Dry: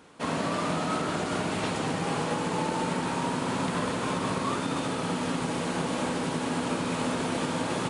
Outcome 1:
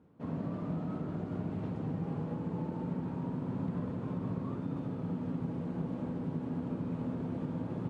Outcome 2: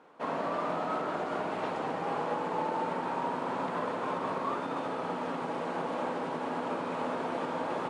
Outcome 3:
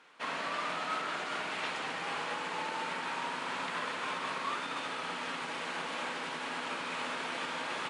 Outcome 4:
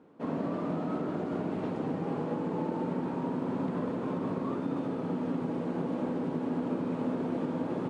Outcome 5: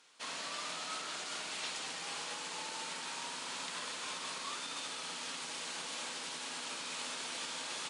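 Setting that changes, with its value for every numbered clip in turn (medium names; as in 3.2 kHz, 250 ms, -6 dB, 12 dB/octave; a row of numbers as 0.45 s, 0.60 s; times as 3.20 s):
band-pass filter, frequency: 110 Hz, 750 Hz, 2.1 kHz, 290 Hz, 5.3 kHz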